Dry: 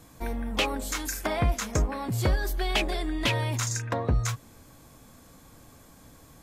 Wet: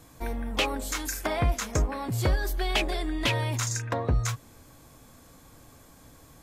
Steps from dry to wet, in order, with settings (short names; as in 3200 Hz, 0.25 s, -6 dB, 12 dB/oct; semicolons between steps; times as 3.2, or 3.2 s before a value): bell 200 Hz -4 dB 0.38 oct